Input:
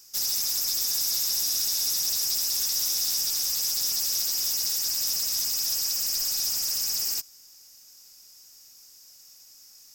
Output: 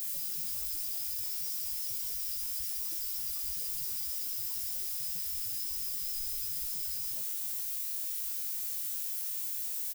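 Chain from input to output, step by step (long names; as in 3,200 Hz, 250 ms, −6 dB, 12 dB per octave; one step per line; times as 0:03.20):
low-pass filter 1,700 Hz 12 dB per octave
upward compression, threshold −48 dBFS
spectral peaks only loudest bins 4
background noise violet −44 dBFS
double-tracking delay 20 ms −5 dB
level +7 dB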